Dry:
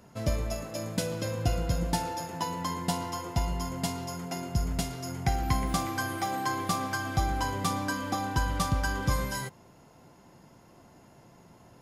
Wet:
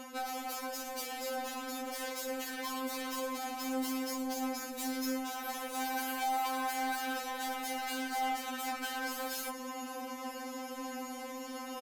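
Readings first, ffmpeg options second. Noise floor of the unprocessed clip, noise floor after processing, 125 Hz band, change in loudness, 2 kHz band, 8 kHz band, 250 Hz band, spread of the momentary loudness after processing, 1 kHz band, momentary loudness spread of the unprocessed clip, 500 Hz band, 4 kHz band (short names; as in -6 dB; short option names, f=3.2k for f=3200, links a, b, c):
-56 dBFS, -44 dBFS, under -40 dB, -5.5 dB, -3.0 dB, -2.5 dB, -4.0 dB, 7 LU, -3.0 dB, 5 LU, -4.5 dB, -2.5 dB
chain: -af "alimiter=level_in=1.5dB:limit=-24dB:level=0:latency=1:release=32,volume=-1.5dB,acontrast=43,aeval=exprs='0.106*sin(PI/2*2.82*val(0)/0.106)':c=same,highpass=220,equalizer=f=13k:w=4.4:g=9.5,aecho=1:1:5.2:0.3,areverse,acompressor=threshold=-32dB:ratio=5,areverse,asoftclip=type=hard:threshold=-33dB,afftfilt=real='re*3.46*eq(mod(b,12),0)':imag='im*3.46*eq(mod(b,12),0)':win_size=2048:overlap=0.75"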